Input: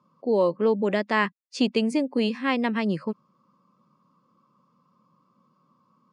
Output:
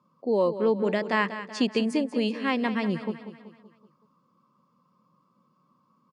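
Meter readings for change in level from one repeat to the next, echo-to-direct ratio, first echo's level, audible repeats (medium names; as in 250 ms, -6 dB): -6.0 dB, -11.0 dB, -12.0 dB, 4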